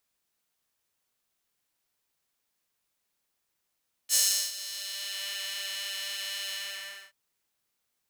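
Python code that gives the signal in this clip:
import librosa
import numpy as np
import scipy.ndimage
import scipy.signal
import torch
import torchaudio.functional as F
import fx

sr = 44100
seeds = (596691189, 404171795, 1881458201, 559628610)

y = fx.sub_patch_pwm(sr, seeds[0], note=55, wave2='square', interval_st=19, detune_cents=16, level2_db=-2.0, sub_db=-15.0, noise_db=-30.0, kind='highpass', cutoff_hz=1700.0, q=1.4, env_oct=2.0, env_decay_s=1.17, env_sustain_pct=40, attack_ms=52.0, decay_s=0.37, sustain_db=-18.0, release_s=0.6, note_s=2.43, lfo_hz=3.7, width_pct=37, width_swing_pct=20)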